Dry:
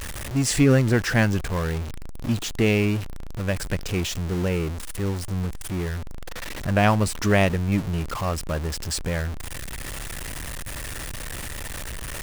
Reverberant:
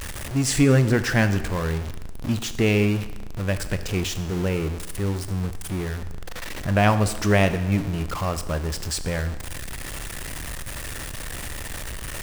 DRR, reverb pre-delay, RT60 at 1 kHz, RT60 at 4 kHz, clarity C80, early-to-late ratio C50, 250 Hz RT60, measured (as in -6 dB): 10.5 dB, 23 ms, 1.1 s, 1.1 s, 14.0 dB, 12.5 dB, 1.1 s